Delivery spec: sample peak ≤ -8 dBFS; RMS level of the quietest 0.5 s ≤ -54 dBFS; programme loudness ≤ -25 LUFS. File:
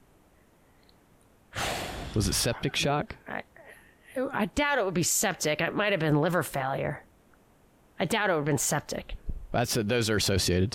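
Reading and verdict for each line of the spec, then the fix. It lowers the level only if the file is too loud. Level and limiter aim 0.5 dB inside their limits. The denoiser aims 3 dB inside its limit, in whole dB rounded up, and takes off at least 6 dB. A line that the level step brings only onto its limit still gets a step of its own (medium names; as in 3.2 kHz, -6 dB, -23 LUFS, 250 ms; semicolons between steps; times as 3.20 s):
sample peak -15.0 dBFS: pass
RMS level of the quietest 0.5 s -61 dBFS: pass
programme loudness -28.0 LUFS: pass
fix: none needed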